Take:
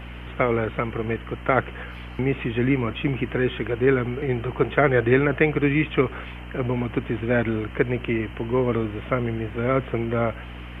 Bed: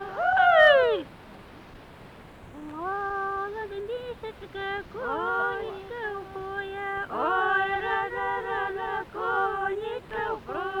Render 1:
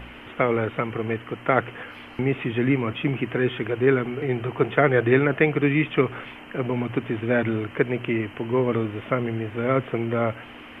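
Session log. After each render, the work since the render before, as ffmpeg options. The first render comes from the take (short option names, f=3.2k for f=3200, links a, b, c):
-af "bandreject=f=60:t=h:w=4,bandreject=f=120:t=h:w=4,bandreject=f=180:t=h:w=4"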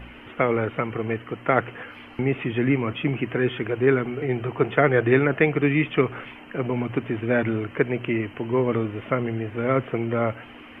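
-af "afftdn=nr=6:nf=-43"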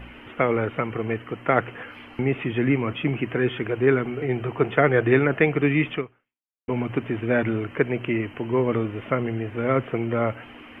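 -filter_complex "[0:a]asplit=2[a][b];[a]atrim=end=6.68,asetpts=PTS-STARTPTS,afade=t=out:st=5.94:d=0.74:c=exp[c];[b]atrim=start=6.68,asetpts=PTS-STARTPTS,afade=t=in:d=0.004:c=hsin[d];[c][d]concat=n=2:v=0:a=1"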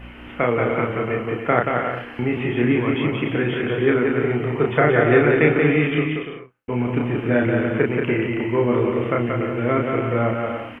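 -filter_complex "[0:a]asplit=2[a][b];[b]adelay=33,volume=-3dB[c];[a][c]amix=inputs=2:normalize=0,aecho=1:1:180|288|352.8|391.7|415:0.631|0.398|0.251|0.158|0.1"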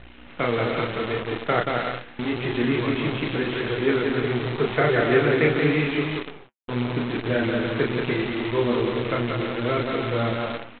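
-af "aresample=8000,acrusher=bits=5:dc=4:mix=0:aa=0.000001,aresample=44100,flanger=delay=1.6:depth=7.5:regen=-54:speed=0.82:shape=triangular"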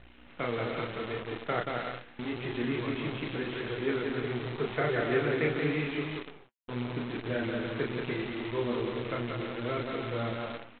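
-af "volume=-9dB"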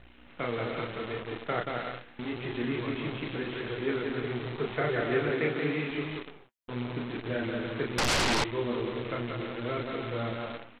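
-filter_complex "[0:a]asettb=1/sr,asplit=3[a][b][c];[a]atrim=end=5.294[d];[b]atrim=start=5.29:end=5.9,asetpts=PTS-STARTPTS,afade=t=in:d=0.004:c=qsin,afade=t=out:st=0.606:d=0.004:c=qsin,highpass=130[e];[c]atrim=start=5.896[f];[d][e]acrossfade=d=0.004:c1=hsin:c2=qsin[g];[g][f]acrossfade=d=0.004:c1=qsin:c2=hsin,asettb=1/sr,asplit=3[h][i][j];[h]atrim=end=7.984[k];[i]atrim=start=7.98:end=8.44,asetpts=PTS-STARTPTS,afade=t=in:d=0.004:c=qsin,afade=t=out:st=0.456:d=0.004:c=qsin,aeval=exprs='0.075*sin(PI/2*6.31*val(0)/0.075)':c=same[l];[j]atrim=start=8.436[m];[k][l]acrossfade=d=0.004:c1=hsin:c2=qsin[n];[n][m]acrossfade=d=0.004:c1=qsin:c2=hsin"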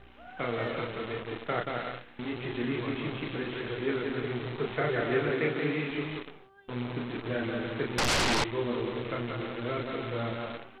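-filter_complex "[1:a]volume=-25.5dB[a];[0:a][a]amix=inputs=2:normalize=0"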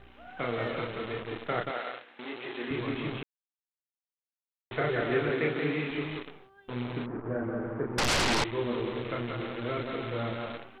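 -filter_complex "[0:a]asettb=1/sr,asplit=3[a][b][c];[a]atrim=end=1.714[d];[b]atrim=start=1.71:end=2.71,asetpts=PTS-STARTPTS,afade=t=in:d=0.004:c=qsin,afade=t=out:st=0.996:d=0.004:c=qsin,highpass=380,lowpass=6.5k[e];[c]atrim=start=2.706[f];[d][e]acrossfade=d=0.004:c1=hsin:c2=qsin[g];[g][f]acrossfade=d=0.004:c1=qsin:c2=hsin,asettb=1/sr,asplit=3[h][i][j];[h]atrim=end=7.064[k];[i]atrim=start=7.06:end=7.98,asetpts=PTS-STARTPTS,afade=t=in:d=0.004:c=qsin,afade=t=out:st=0.916:d=0.004:c=qsin,lowpass=f=1.4k:w=0.5412,lowpass=f=1.4k:w=1.3066[l];[j]atrim=start=7.976[m];[k][l]acrossfade=d=0.004:c1=hsin:c2=qsin[n];[n][m]acrossfade=d=0.004:c1=qsin:c2=hsin,asplit=3[o][p][q];[o]atrim=end=3.23,asetpts=PTS-STARTPTS,afade=t=out:st=3.226:d=0.004:c=hsin[r];[p]atrim=start=3.23:end=4.71,asetpts=PTS-STARTPTS,volume=0[s];[q]atrim=start=4.71,asetpts=PTS-STARTPTS,afade=t=in:d=0.004:c=hsin[t];[r][s][t]concat=n=3:v=0:a=1"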